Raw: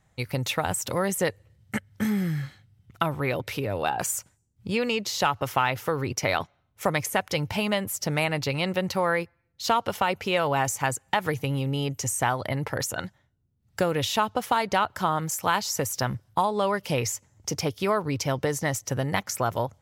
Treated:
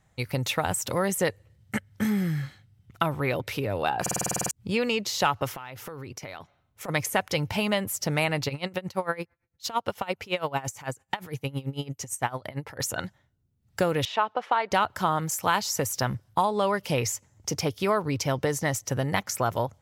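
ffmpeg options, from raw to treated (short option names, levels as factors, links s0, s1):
-filter_complex "[0:a]asplit=3[s0][s1][s2];[s0]afade=t=out:st=5.54:d=0.02[s3];[s1]acompressor=threshold=0.0158:ratio=6:attack=3.2:release=140:knee=1:detection=peak,afade=t=in:st=5.54:d=0.02,afade=t=out:st=6.88:d=0.02[s4];[s2]afade=t=in:st=6.88:d=0.02[s5];[s3][s4][s5]amix=inputs=3:normalize=0,asplit=3[s6][s7][s8];[s6]afade=t=out:st=8.48:d=0.02[s9];[s7]aeval=exprs='val(0)*pow(10,-21*(0.5-0.5*cos(2*PI*8.9*n/s))/20)':c=same,afade=t=in:st=8.48:d=0.02,afade=t=out:st=12.79:d=0.02[s10];[s8]afade=t=in:st=12.79:d=0.02[s11];[s9][s10][s11]amix=inputs=3:normalize=0,asettb=1/sr,asplit=3[s12][s13][s14];[s12]atrim=end=14.054[s15];[s13]atrim=start=14.05:end=14.71,asetpts=PTS-STARTPTS,afade=t=in:d=0.004:c=qsin,afade=t=out:st=0.656:d=0.004:c=qsin,highpass=440,lowpass=2600[s16];[s14]atrim=start=14.706[s17];[s15][s16]acrossfade=d=0.004:c1=hsin:c2=qsin[s18];[s18][s17]acrossfade=d=0.004:c1=qsin:c2=hsin,asplit=11[s19][s20][s21][s22][s23][s24][s25][s26][s27][s28][s29];[s19]atrim=end=4.062[s30];[s20]atrim=start=4.008:end=4.062[s31];[s21]atrim=start=4.008:end=4.062[s32];[s22]atrim=start=4.008:end=4.062[s33];[s23]atrim=start=4.008:end=4.062[s34];[s24]atrim=start=4.008:end=4.062[s35];[s25]atrim=start=4.008:end=4.062[s36];[s26]atrim=start=4.008:end=4.062[s37];[s27]atrim=start=4.008:end=4.062[s38];[s28]atrim=start=4.008:end=4.062[s39];[s29]atrim=start=4.508[s40];[s30][s31]acrossfade=d=0.004:c1=hsin:c2=hsin[s41];[s41][s32]acrossfade=d=0.004:c1=hsin:c2=hsin[s42];[s42][s33]acrossfade=d=0.004:c1=hsin:c2=hsin[s43];[s43][s34]acrossfade=d=0.004:c1=hsin:c2=hsin[s44];[s44][s35]acrossfade=d=0.004:c1=hsin:c2=hsin[s45];[s45][s36]acrossfade=d=0.004:c1=hsin:c2=hsin[s46];[s46][s37]acrossfade=d=0.004:c1=hsin:c2=hsin[s47];[s47][s38]acrossfade=d=0.004:c1=hsin:c2=hsin[s48];[s48][s39]acrossfade=d=0.004:c1=hsin:c2=hsin[s49];[s49][s40]acrossfade=d=0.004:c1=hsin:c2=hsin"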